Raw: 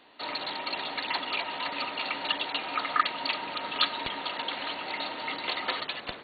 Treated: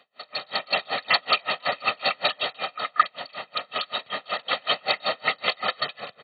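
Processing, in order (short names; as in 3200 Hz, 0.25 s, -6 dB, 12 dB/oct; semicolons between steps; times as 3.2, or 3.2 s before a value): HPF 110 Hz 24 dB/oct; comb 1.6 ms, depth 81%; AGC gain up to 14 dB; dB-linear tremolo 5.3 Hz, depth 33 dB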